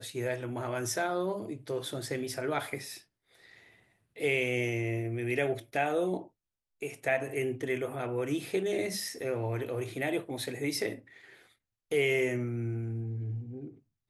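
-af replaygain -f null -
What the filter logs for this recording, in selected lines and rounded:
track_gain = +12.8 dB
track_peak = 0.111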